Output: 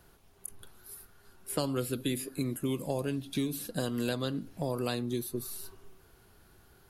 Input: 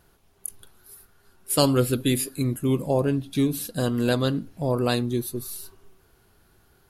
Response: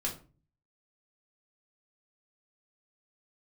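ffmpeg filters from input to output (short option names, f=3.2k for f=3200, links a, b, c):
-filter_complex "[0:a]acrossover=split=190|2300[a][b][c];[a]acompressor=threshold=-42dB:ratio=4[d];[b]acompressor=threshold=-32dB:ratio=4[e];[c]acompressor=threshold=-40dB:ratio=4[f];[d][e][f]amix=inputs=3:normalize=0"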